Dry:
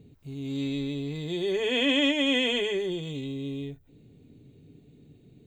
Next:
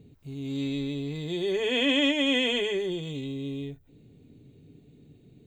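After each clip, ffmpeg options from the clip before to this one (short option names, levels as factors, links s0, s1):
-af anull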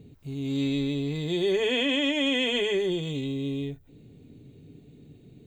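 -af "alimiter=limit=0.0891:level=0:latency=1:release=117,volume=1.5"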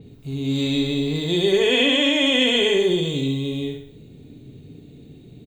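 -af "equalizer=f=3700:t=o:w=0.26:g=4.5,aecho=1:1:67|134|201|268|335:0.562|0.247|0.109|0.0479|0.0211,adynamicequalizer=threshold=0.00631:dfrequency=5700:dqfactor=0.7:tfrequency=5700:tqfactor=0.7:attack=5:release=100:ratio=0.375:range=2:mode=boostabove:tftype=highshelf,volume=1.88"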